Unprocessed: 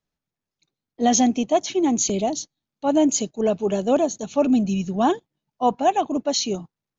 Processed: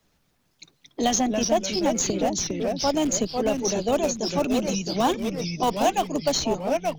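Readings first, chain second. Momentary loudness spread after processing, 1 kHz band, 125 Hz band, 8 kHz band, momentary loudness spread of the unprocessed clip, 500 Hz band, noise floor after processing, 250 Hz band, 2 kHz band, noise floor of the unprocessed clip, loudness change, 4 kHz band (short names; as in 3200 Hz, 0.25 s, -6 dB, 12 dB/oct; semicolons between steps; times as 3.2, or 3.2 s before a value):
4 LU, -2.5 dB, 0.0 dB, n/a, 8 LU, -1.5 dB, -68 dBFS, -4.5 dB, +3.0 dB, under -85 dBFS, -2.5 dB, +2.0 dB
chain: harmonic-percussive split percussive +8 dB; in parallel at -8.5 dB: Schmitt trigger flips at -12 dBFS; on the sum: notches 50/100/150 Hz; echoes that change speed 0.15 s, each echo -2 st, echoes 3, each echo -6 dB; three-band squash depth 70%; gain -8.5 dB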